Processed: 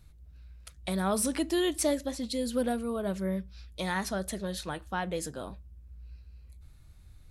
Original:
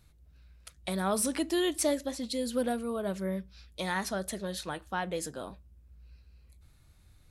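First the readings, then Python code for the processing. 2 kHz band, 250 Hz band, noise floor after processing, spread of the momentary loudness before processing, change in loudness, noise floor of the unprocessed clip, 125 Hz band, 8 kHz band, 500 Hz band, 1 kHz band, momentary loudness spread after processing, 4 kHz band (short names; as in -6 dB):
0.0 dB, +1.5 dB, -55 dBFS, 10 LU, +1.0 dB, -61 dBFS, +3.0 dB, 0.0 dB, +0.5 dB, 0.0 dB, 22 LU, 0.0 dB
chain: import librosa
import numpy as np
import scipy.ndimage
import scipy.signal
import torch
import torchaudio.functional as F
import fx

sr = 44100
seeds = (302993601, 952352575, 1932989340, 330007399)

y = fx.low_shelf(x, sr, hz=120.0, db=8.5)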